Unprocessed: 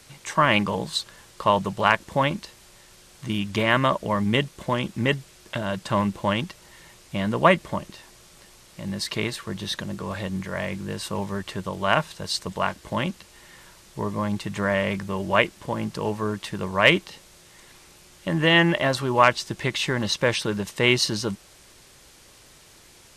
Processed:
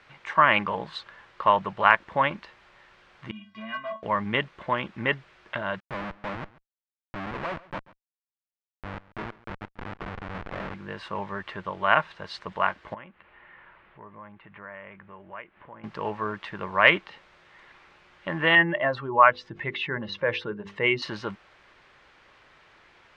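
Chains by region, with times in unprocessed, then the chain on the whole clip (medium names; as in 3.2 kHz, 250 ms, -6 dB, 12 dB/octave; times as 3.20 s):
3.31–4.03 s: feedback comb 220 Hz, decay 0.2 s, harmonics odd, mix 100% + hard clipper -27.5 dBFS
5.80–10.74 s: low-pass 1.2 kHz + Schmitt trigger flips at -28.5 dBFS + delay 137 ms -20.5 dB
12.94–15.84 s: compression 2.5:1, threshold -46 dBFS + low-pass 2.8 kHz 24 dB/octave
18.55–21.02 s: spectral contrast enhancement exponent 1.6 + hum notches 50/100/150/200/250/300/350/400/450/500 Hz + decimation joined by straight lines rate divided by 2×
whole clip: low-pass 2.8 kHz 12 dB/octave; peaking EQ 1.5 kHz +13.5 dB 3 oct; trim -10.5 dB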